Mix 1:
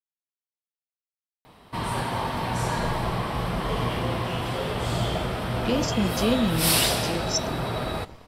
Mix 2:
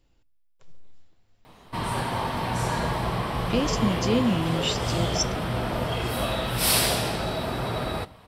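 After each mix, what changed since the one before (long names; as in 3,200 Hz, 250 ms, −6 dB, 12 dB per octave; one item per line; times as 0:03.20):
speech: entry −2.15 s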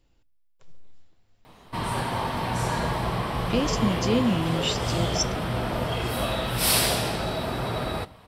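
nothing changed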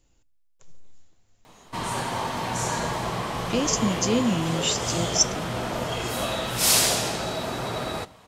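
background: add low-shelf EQ 95 Hz −11 dB
master: add parametric band 6,700 Hz +14.5 dB 0.39 octaves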